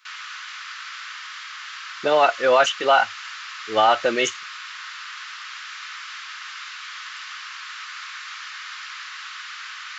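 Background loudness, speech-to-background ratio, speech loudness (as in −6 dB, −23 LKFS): −34.0 LKFS, 14.5 dB, −19.5 LKFS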